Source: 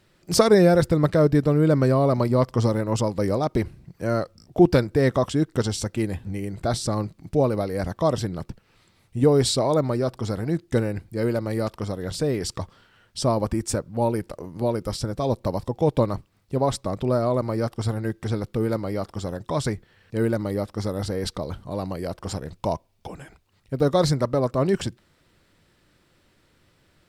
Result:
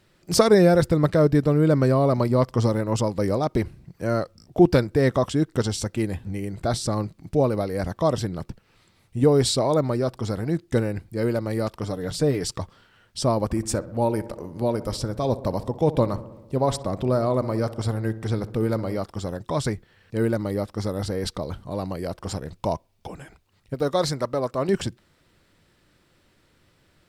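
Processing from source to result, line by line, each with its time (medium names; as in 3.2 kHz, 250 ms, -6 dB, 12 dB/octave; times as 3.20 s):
11.82–12.52 s: comb 6.8 ms, depth 48%
13.44–18.98 s: filtered feedback delay 63 ms, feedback 72%, low-pass 1.9 kHz, level -15.5 dB
23.74–24.69 s: bass shelf 310 Hz -9 dB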